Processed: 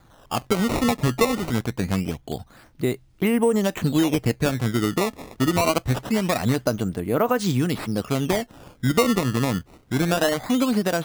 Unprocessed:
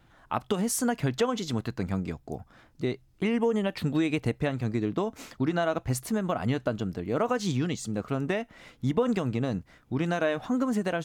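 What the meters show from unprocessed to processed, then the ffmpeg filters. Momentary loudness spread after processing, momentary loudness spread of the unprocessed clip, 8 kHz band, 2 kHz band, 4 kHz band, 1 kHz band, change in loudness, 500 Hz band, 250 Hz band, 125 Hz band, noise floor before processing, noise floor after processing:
7 LU, 7 LU, +5.5 dB, +6.5 dB, +9.0 dB, +6.5 dB, +6.0 dB, +5.5 dB, +6.0 dB, +6.0 dB, −61 dBFS, −55 dBFS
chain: -af "acrusher=samples=16:mix=1:aa=0.000001:lfo=1:lforange=25.6:lforate=0.24,volume=6dB"

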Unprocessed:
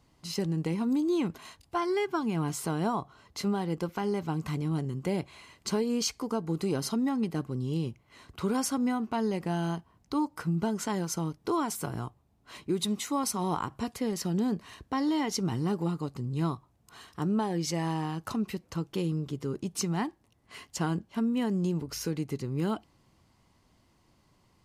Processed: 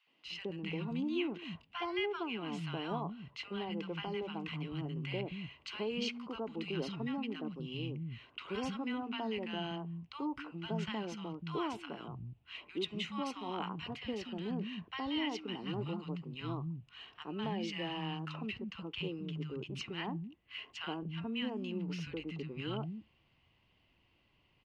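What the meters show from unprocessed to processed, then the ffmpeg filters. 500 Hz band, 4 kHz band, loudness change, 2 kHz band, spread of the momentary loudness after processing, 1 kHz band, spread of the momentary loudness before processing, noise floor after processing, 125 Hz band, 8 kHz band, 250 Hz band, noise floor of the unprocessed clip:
−7.5 dB, −1.5 dB, −8.5 dB, −1.5 dB, 8 LU, −8.5 dB, 7 LU, −72 dBFS, −9.0 dB, −22.0 dB, −9.0 dB, −67 dBFS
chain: -filter_complex "[0:a]lowpass=frequency=2800:width_type=q:width=5.5,acrossover=split=210|1100[link_01][link_02][link_03];[link_02]adelay=70[link_04];[link_01]adelay=250[link_05];[link_05][link_04][link_03]amix=inputs=3:normalize=0,volume=-7dB"

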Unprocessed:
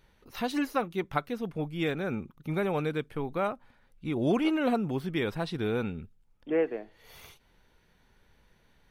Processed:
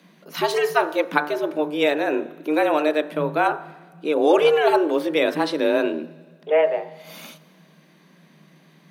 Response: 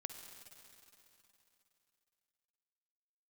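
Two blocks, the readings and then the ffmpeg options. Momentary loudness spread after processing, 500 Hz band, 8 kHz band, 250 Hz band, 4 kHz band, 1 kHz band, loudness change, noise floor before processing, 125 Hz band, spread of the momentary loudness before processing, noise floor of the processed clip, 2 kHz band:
15 LU, +12.5 dB, can't be measured, +5.0 dB, +11.0 dB, +12.0 dB, +10.0 dB, −66 dBFS, −4.5 dB, 12 LU, −55 dBFS, +12.0 dB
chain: -filter_complex "[0:a]afreqshift=150,bandreject=frequency=49.26:width_type=h:width=4,bandreject=frequency=98.52:width_type=h:width=4,bandreject=frequency=147.78:width_type=h:width=4,bandreject=frequency=197.04:width_type=h:width=4,bandreject=frequency=246.3:width_type=h:width=4,bandreject=frequency=295.56:width_type=h:width=4,bandreject=frequency=344.82:width_type=h:width=4,bandreject=frequency=394.08:width_type=h:width=4,bandreject=frequency=443.34:width_type=h:width=4,bandreject=frequency=492.6:width_type=h:width=4,bandreject=frequency=541.86:width_type=h:width=4,bandreject=frequency=591.12:width_type=h:width=4,bandreject=frequency=640.38:width_type=h:width=4,bandreject=frequency=689.64:width_type=h:width=4,bandreject=frequency=738.9:width_type=h:width=4,bandreject=frequency=788.16:width_type=h:width=4,bandreject=frequency=837.42:width_type=h:width=4,bandreject=frequency=886.68:width_type=h:width=4,bandreject=frequency=935.94:width_type=h:width=4,bandreject=frequency=985.2:width_type=h:width=4,bandreject=frequency=1034.46:width_type=h:width=4,bandreject=frequency=1083.72:width_type=h:width=4,bandreject=frequency=1132.98:width_type=h:width=4,bandreject=frequency=1182.24:width_type=h:width=4,bandreject=frequency=1231.5:width_type=h:width=4,bandreject=frequency=1280.76:width_type=h:width=4,bandreject=frequency=1330.02:width_type=h:width=4,bandreject=frequency=1379.28:width_type=h:width=4,bandreject=frequency=1428.54:width_type=h:width=4,bandreject=frequency=1477.8:width_type=h:width=4,bandreject=frequency=1527.06:width_type=h:width=4,bandreject=frequency=1576.32:width_type=h:width=4,bandreject=frequency=1625.58:width_type=h:width=4,bandreject=frequency=1674.84:width_type=h:width=4,bandreject=frequency=1724.1:width_type=h:width=4,bandreject=frequency=1773.36:width_type=h:width=4,bandreject=frequency=1822.62:width_type=h:width=4,bandreject=frequency=1871.88:width_type=h:width=4,bandreject=frequency=1921.14:width_type=h:width=4,asplit=2[link_01][link_02];[1:a]atrim=start_sample=2205,asetrate=79380,aresample=44100[link_03];[link_02][link_03]afir=irnorm=-1:irlink=0,volume=-3dB[link_04];[link_01][link_04]amix=inputs=2:normalize=0,volume=8.5dB"

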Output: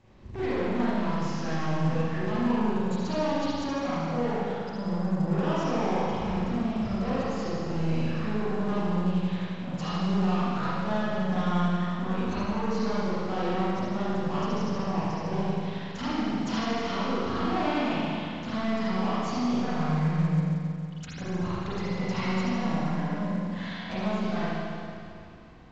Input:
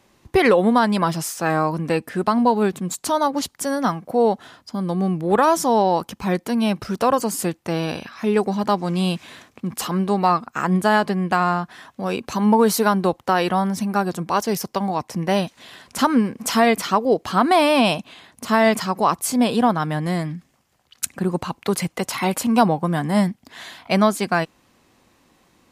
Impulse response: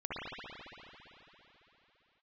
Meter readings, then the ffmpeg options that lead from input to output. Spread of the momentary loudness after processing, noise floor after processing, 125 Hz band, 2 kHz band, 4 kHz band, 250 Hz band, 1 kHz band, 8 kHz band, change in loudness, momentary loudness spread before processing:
6 LU, −39 dBFS, −2.5 dB, −10.0 dB, −9.5 dB, −6.5 dB, −11.5 dB, −19.0 dB, −8.5 dB, 10 LU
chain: -filter_complex "[0:a]aemphasis=mode=reproduction:type=bsi,acompressor=threshold=-20dB:ratio=6,aresample=16000,asoftclip=type=tanh:threshold=-26.5dB,aresample=44100[link_01];[1:a]atrim=start_sample=2205,asetrate=66150,aresample=44100[link_02];[link_01][link_02]afir=irnorm=-1:irlink=0" -ar 16000 -c:a pcm_mulaw

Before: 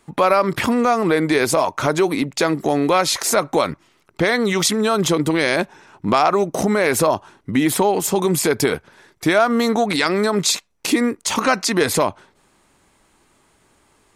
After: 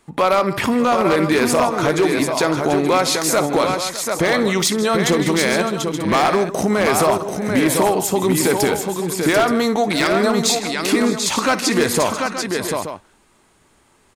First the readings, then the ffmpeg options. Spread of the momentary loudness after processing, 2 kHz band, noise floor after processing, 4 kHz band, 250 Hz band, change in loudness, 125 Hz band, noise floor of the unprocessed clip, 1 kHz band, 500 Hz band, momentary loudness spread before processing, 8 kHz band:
5 LU, +1.0 dB, −57 dBFS, +1.5 dB, +1.5 dB, +1.0 dB, +1.5 dB, −60 dBFS, +1.0 dB, +1.5 dB, 5 LU, +1.5 dB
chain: -af "aecho=1:1:58|158|607|740|876:0.168|0.168|0.141|0.531|0.266,aeval=exprs='0.398*(abs(mod(val(0)/0.398+3,4)-2)-1)':channel_layout=same"

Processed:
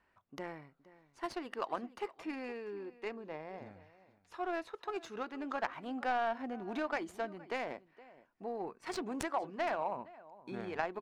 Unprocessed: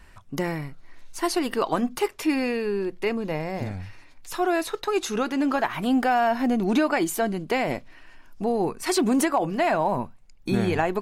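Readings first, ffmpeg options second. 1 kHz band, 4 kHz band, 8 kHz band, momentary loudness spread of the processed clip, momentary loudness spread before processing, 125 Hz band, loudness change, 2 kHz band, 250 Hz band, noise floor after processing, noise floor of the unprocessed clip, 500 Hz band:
−12.0 dB, −16.5 dB, −21.5 dB, 15 LU, 12 LU, −22.5 dB, −14.5 dB, −12.0 dB, −18.5 dB, −73 dBFS, −49 dBFS, −14.0 dB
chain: -af "aderivative,aecho=1:1:468:0.141,adynamicsmooth=sensitivity=1.5:basefreq=780,volume=10dB"

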